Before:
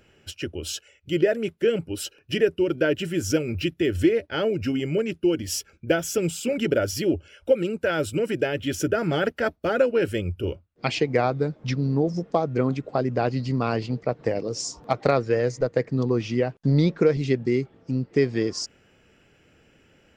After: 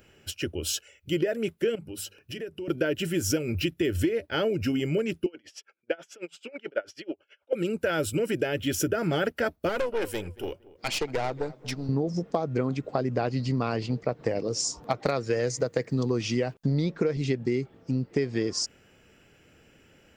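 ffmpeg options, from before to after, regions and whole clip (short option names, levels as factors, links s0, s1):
-filter_complex "[0:a]asettb=1/sr,asplit=3[s0][s1][s2];[s0]atrim=end=1.754[s3];[s1]atrim=start=1.75:end=2.68,asetpts=PTS-STARTPTS,afade=t=in:d=0.004:c=qsin,afade=t=out:st=0.926:d=0.004:c=qsin,bandreject=f=50:t=h:w=6,bandreject=f=100:t=h:w=6,bandreject=f=150:t=h:w=6,bandreject=f=200:t=h:w=6,acompressor=threshold=0.0126:ratio=3:attack=3.2:release=140:knee=1:detection=peak[s4];[s2]atrim=start=2.676[s5];[s3][s4]acrossfade=d=0.004:c1=hsin:c2=qsin[s6];[s6][s5]acrossfade=d=0.004:c1=qsin:c2=hsin,asettb=1/sr,asplit=3[s7][s8][s9];[s7]atrim=end=5.264[s10];[s8]atrim=start=5.26:end=7.53,asetpts=PTS-STARTPTS,afade=t=in:d=0.004:c=qsin,afade=t=out:st=2.266:d=0.004:c=qsin,highpass=540,lowpass=2800,aeval=exprs='val(0)*pow(10,-27*(0.5-0.5*cos(2*PI*9.2*n/s))/20)':c=same[s11];[s9]atrim=start=7.526[s12];[s10][s11]acrossfade=d=0.004:c1=hsin:c2=qsin[s13];[s13][s12]acrossfade=d=0.004:c1=qsin:c2=hsin,asettb=1/sr,asplit=3[s14][s15][s16];[s14]atrim=end=9.694[s17];[s15]atrim=start=9.69:end=11.89,asetpts=PTS-STARTPTS,afade=t=in:d=0.004:c=qsin,afade=t=out:st=2.196:d=0.004:c=qsin,bass=f=250:g=-9,treble=f=4000:g=4,aeval=exprs='(tanh(12.6*val(0)+0.6)-tanh(0.6))/12.6':c=same,asplit=2[s18][s19];[s19]adelay=231,lowpass=f=1700:p=1,volume=0.112,asplit=2[s20][s21];[s21]adelay=231,lowpass=f=1700:p=1,volume=0.29[s22];[s18][s20][s22]amix=inputs=3:normalize=0,atrim=end_sample=97020[s23];[s16]atrim=start=11.886[s24];[s17][s23]acrossfade=d=0.004:c1=hsin:c2=qsin[s25];[s25][s24]acrossfade=d=0.004:c1=qsin:c2=hsin,asettb=1/sr,asplit=3[s26][s27][s28];[s26]atrim=end=15.064[s29];[s27]atrim=start=15.06:end=16.54,asetpts=PTS-STARTPTS,afade=t=in:d=0.004:c=qsin,afade=t=out:st=1.476:d=0.004:c=qsin,highpass=57,highshelf=f=4300:g=10[s30];[s28]atrim=start=16.536[s31];[s29][s30]acrossfade=d=0.004:c1=hsin:c2=qsin[s32];[s32][s31]acrossfade=d=0.004:c1=qsin:c2=hsin,highshelf=f=10000:g=10.5,acompressor=threshold=0.0794:ratio=6"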